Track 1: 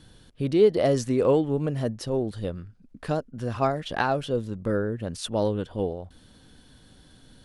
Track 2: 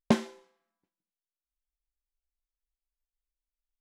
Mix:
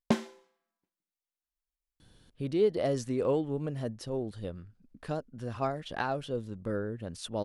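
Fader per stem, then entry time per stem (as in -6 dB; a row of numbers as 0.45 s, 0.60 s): -7.5 dB, -3.0 dB; 2.00 s, 0.00 s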